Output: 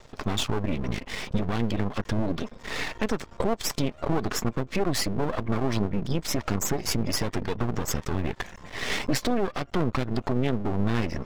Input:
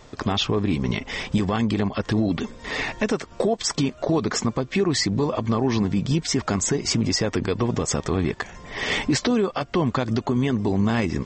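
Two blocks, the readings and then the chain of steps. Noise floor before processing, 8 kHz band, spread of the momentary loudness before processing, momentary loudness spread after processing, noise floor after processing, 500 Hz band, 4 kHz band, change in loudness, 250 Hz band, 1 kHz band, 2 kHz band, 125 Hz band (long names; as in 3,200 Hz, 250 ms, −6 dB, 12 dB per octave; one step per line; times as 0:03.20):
−47 dBFS, −5.0 dB, 4 LU, 5 LU, −50 dBFS, −5.0 dB, −5.5 dB, −5.0 dB, −6.0 dB, −3.5 dB, −4.5 dB, −4.0 dB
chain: gate on every frequency bin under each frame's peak −30 dB strong
half-wave rectification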